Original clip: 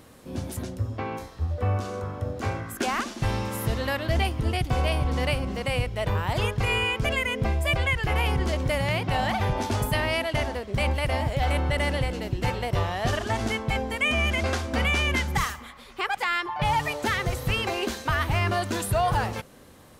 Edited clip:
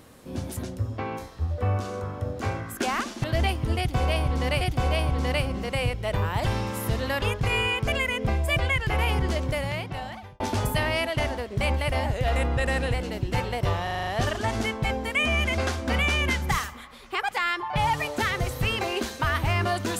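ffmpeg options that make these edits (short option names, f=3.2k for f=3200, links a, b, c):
-filter_complex "[0:a]asplit=14[a][b][c][d][e][f][g][h][i][j][k][l][m][n];[a]atrim=end=3.242[o];[b]atrim=start=3.998:end=5.372[p];[c]atrim=start=4.538:end=6.392[q];[d]atrim=start=3.238:end=4.002[r];[e]atrim=start=6.388:end=9.57,asetpts=PTS-STARTPTS,afade=t=out:st=2.082:d=1.1[s];[f]atrim=start=9.57:end=11.234,asetpts=PTS-STARTPTS,afade=t=in:d=0.004:c=hsin[t];[g]atrim=start=11.23:end=12.04,asetpts=PTS-STARTPTS,asetrate=40572,aresample=44100,atrim=end_sample=38827,asetpts=PTS-STARTPTS[u];[h]atrim=start=12.036:end=12.972[v];[i]atrim=start=12.928:end=12.972[w];[j]atrim=start=12.928:end=12.972[x];[k]atrim=start=12.928:end=12.972[y];[l]atrim=start=12.928:end=12.972[z];[m]atrim=start=12.928:end=12.972[aa];[n]atrim=start=12.928[ab];[o][p]acrossfade=d=0.004:c1=hsin:c2=hsin[ac];[ac][q]acrossfade=d=0.004:c1=hsin:c2=hsin[ad];[ad][r]acrossfade=d=0.004:c1=hsin:c2=hsin[ae];[s][t]concat=n=2:v=0:a=1[af];[ae][af]acrossfade=d=0.004:c1=hsin:c2=hsin[ag];[ag][u]acrossfade=d=0.004:c1=hsin:c2=hsin[ah];[ah][v]acrossfade=d=0.004:c1=hsin:c2=hsin[ai];[ai][w]acrossfade=d=0.004:c1=hsin:c2=hsin[aj];[aj][x]acrossfade=d=0.004:c1=hsin:c2=hsin[ak];[ak][y]acrossfade=d=0.004:c1=hsin:c2=hsin[al];[al][z]acrossfade=d=0.004:c1=hsin:c2=hsin[am];[am][aa]acrossfade=d=0.004:c1=hsin:c2=hsin[an];[an][ab]acrossfade=d=0.004:c1=hsin:c2=hsin"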